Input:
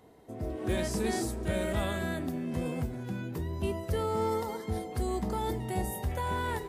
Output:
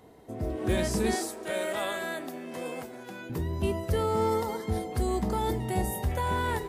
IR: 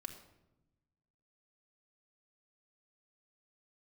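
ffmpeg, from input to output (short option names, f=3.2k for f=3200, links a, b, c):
-filter_complex "[0:a]asettb=1/sr,asplit=3[a][b][c];[a]atrim=end=1.154[d];[b]atrim=start=1.15:end=3.3,asetpts=PTS-STARTPTS,afade=t=in:d=0.004:c=qsin,afade=t=out:st=2.146:d=0.004:c=qsin,highpass=440[e];[c]atrim=start=3.296[f];[d][e]acrossfade=d=0.004:c1=hsin:c2=qsin[g];[g][f]acrossfade=d=0.004:c1=qsin:c2=hsin,volume=3.5dB"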